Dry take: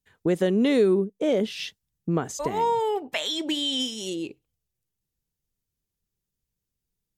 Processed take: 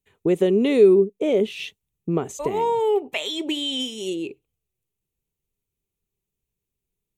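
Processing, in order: graphic EQ with 31 bands 400 Hz +9 dB, 1.6 kHz -9 dB, 2.5 kHz +6 dB, 5 kHz -11 dB

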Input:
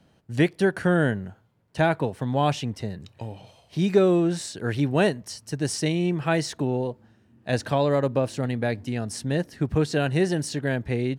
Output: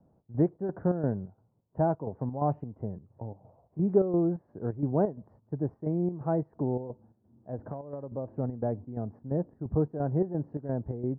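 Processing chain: square tremolo 2.9 Hz, depth 60%, duty 65%; inverse Chebyshev low-pass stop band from 3.2 kHz, stop band 60 dB; 7.62–8.12 s: compression 16:1, threshold -31 dBFS, peak gain reduction 13.5 dB; trim -4 dB

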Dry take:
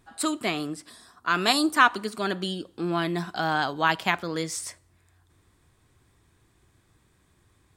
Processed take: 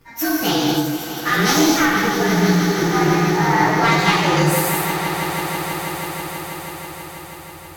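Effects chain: frequency axis rescaled in octaves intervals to 113%; in parallel at -3 dB: compressor with a negative ratio -32 dBFS; on the sum: one-sided clip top -23 dBFS; 1.68–3.80 s: distance through air 310 m; on a send: echo with a slow build-up 162 ms, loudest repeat 5, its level -13 dB; on the sum: gated-style reverb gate 290 ms flat, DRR -3 dB; trim +5 dB

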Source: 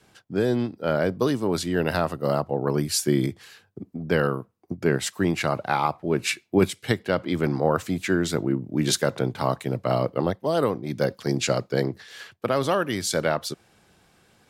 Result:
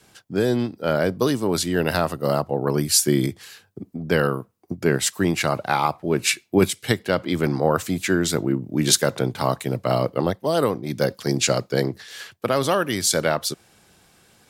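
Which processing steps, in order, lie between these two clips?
treble shelf 4.7 kHz +8 dB; trim +2 dB

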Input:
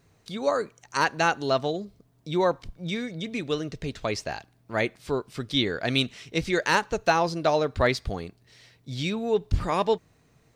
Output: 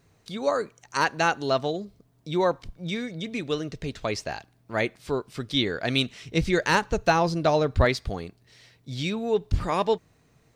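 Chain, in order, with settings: 6.23–7.85 s: bass shelf 170 Hz +10.5 dB

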